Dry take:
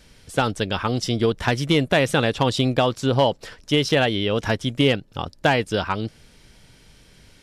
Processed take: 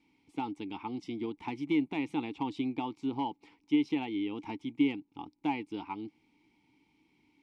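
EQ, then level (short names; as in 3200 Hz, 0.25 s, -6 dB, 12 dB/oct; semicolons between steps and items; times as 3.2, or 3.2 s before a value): vowel filter u; high shelf 6200 Hz +5.5 dB; -2.0 dB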